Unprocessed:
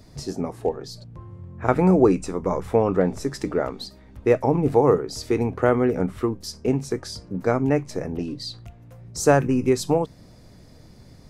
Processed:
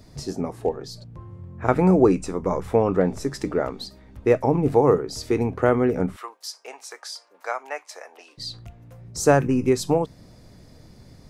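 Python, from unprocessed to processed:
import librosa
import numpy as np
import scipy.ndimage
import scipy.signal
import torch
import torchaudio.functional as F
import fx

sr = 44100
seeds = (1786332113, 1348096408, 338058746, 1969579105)

y = fx.highpass(x, sr, hz=720.0, slope=24, at=(6.16, 8.38))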